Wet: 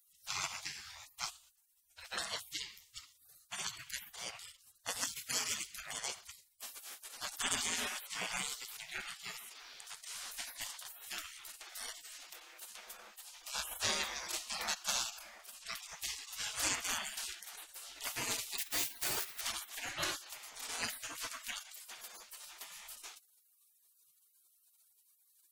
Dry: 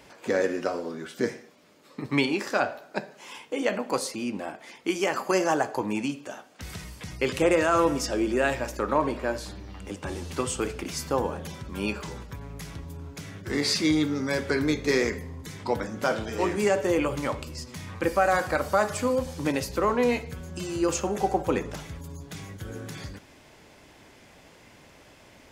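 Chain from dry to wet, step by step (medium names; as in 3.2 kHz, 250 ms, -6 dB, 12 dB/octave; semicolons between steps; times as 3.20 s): 18.58–19.41 s: zero-crossing glitches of -28.5 dBFS; spectral gate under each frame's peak -30 dB weak; trim +6 dB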